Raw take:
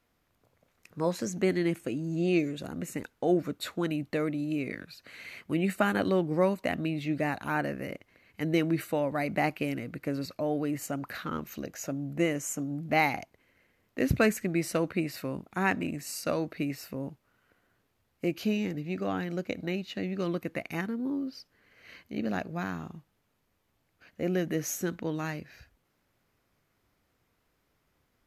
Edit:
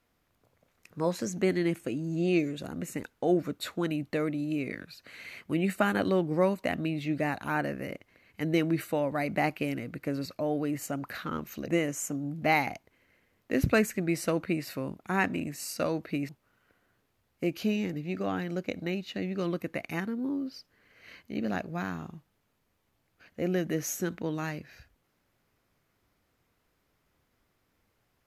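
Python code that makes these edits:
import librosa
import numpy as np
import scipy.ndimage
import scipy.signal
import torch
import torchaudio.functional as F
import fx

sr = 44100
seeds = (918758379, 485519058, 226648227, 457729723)

y = fx.edit(x, sr, fx.cut(start_s=11.68, length_s=0.47),
    fx.cut(start_s=16.76, length_s=0.34), tone=tone)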